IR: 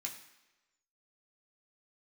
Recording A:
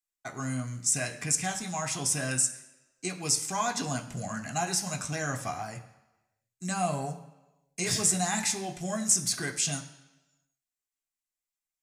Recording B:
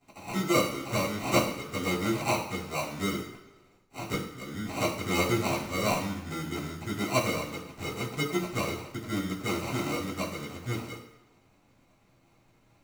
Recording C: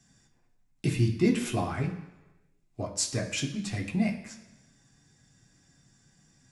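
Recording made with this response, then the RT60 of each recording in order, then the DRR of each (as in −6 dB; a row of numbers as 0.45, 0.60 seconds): C; 1.1, 1.1, 1.1 seconds; 3.5, −9.5, −0.5 decibels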